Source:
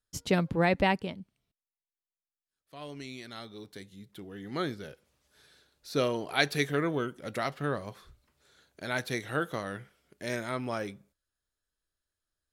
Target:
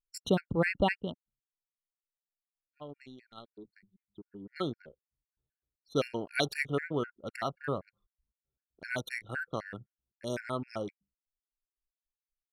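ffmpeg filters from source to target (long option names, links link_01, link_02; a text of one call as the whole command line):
ffmpeg -i in.wav -af "anlmdn=0.631,afftfilt=real='re*gt(sin(2*PI*3.9*pts/sr)*(1-2*mod(floor(b*sr/1024/1400),2)),0)':imag='im*gt(sin(2*PI*3.9*pts/sr)*(1-2*mod(floor(b*sr/1024/1400),2)),0)':win_size=1024:overlap=0.75" out.wav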